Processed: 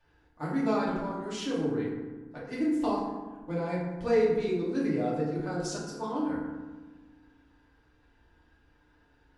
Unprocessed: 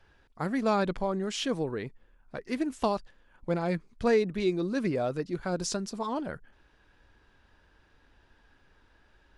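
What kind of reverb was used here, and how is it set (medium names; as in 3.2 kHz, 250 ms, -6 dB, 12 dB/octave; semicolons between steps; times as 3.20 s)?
FDN reverb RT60 1.3 s, low-frequency decay 1.4×, high-frequency decay 0.45×, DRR -7.5 dB; trim -10.5 dB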